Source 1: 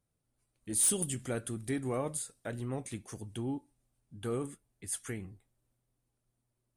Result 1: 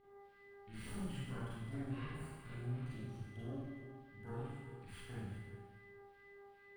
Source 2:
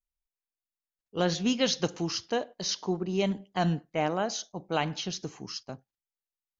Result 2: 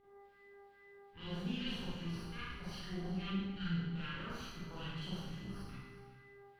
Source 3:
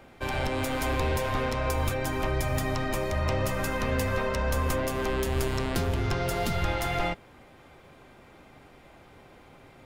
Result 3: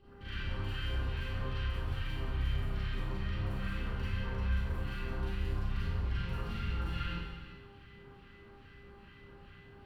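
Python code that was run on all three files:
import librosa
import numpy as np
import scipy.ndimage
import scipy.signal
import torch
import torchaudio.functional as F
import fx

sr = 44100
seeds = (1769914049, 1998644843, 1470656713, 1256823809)

p1 = fx.lower_of_two(x, sr, delay_ms=0.68)
p2 = fx.over_compress(p1, sr, threshold_db=-37.0, ratio=-1.0)
p3 = p1 + (p2 * 10.0 ** (-2.0 / 20.0))
p4 = fx.dmg_buzz(p3, sr, base_hz=400.0, harmonics=5, level_db=-44.0, tilt_db=-5, odd_only=False)
p5 = fx.tone_stack(p4, sr, knobs='5-5-5')
p6 = fx.dmg_noise_colour(p5, sr, seeds[0], colour='white', level_db=-70.0)
p7 = np.clip(p6, -10.0 ** (-32.5 / 20.0), 10.0 ** (-32.5 / 20.0))
p8 = fx.phaser_stages(p7, sr, stages=2, low_hz=560.0, high_hz=3200.0, hz=2.4, feedback_pct=25)
p9 = fx.air_absorb(p8, sr, metres=450.0)
p10 = p9 + fx.echo_single(p9, sr, ms=368, db=-14.0, dry=0)
p11 = fx.rev_schroeder(p10, sr, rt60_s=1.2, comb_ms=32, drr_db=-9.0)
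y = p11 * 10.0 ** (-2.0 / 20.0)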